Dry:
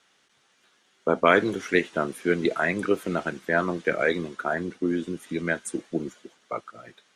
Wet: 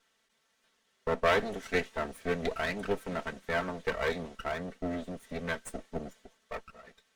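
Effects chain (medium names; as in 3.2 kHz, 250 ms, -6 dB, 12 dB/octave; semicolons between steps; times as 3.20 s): comb filter that takes the minimum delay 4.5 ms; small resonant body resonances 550/1900 Hz, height 8 dB; trim -7.5 dB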